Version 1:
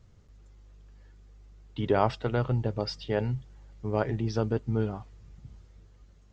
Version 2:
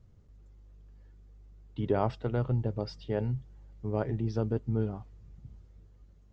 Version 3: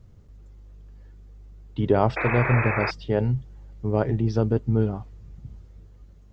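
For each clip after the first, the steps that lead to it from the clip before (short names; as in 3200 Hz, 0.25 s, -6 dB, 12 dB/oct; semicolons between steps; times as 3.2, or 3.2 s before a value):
tilt shelf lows +4.5 dB, about 790 Hz; gain -5.5 dB
painted sound noise, 2.16–2.91, 310–2600 Hz -35 dBFS; gain +8 dB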